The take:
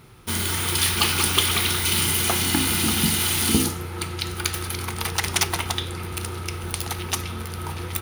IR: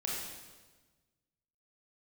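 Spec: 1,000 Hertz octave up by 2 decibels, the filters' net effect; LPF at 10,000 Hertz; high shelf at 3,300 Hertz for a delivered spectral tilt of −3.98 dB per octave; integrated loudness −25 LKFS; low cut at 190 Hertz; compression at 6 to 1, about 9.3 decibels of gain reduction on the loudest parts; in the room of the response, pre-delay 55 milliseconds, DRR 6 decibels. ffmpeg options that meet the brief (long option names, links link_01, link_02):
-filter_complex "[0:a]highpass=190,lowpass=10000,equalizer=frequency=1000:width_type=o:gain=3.5,highshelf=frequency=3300:gain=-8,acompressor=threshold=-28dB:ratio=6,asplit=2[link_01][link_02];[1:a]atrim=start_sample=2205,adelay=55[link_03];[link_02][link_03]afir=irnorm=-1:irlink=0,volume=-9.5dB[link_04];[link_01][link_04]amix=inputs=2:normalize=0,volume=6dB"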